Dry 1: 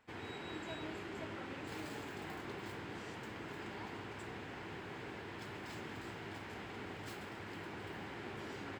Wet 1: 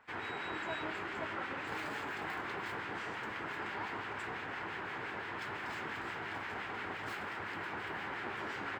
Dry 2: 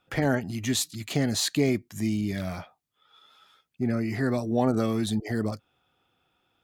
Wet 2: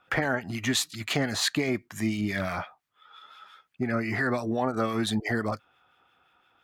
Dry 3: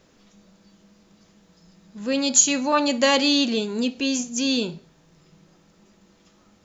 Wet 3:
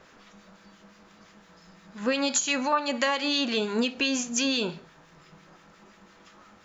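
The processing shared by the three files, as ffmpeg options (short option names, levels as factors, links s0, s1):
-filter_complex "[0:a]equalizer=f=1400:w=0.53:g=13,acompressor=threshold=0.1:ratio=6,acrossover=split=1400[s0][s1];[s0]aeval=exprs='val(0)*(1-0.5/2+0.5/2*cos(2*PI*5.8*n/s))':c=same[s2];[s1]aeval=exprs='val(0)*(1-0.5/2-0.5/2*cos(2*PI*5.8*n/s))':c=same[s3];[s2][s3]amix=inputs=2:normalize=0"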